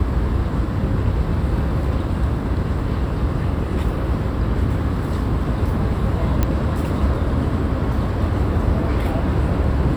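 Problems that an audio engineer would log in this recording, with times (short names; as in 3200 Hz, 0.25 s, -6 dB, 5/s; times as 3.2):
6.43 pop -6 dBFS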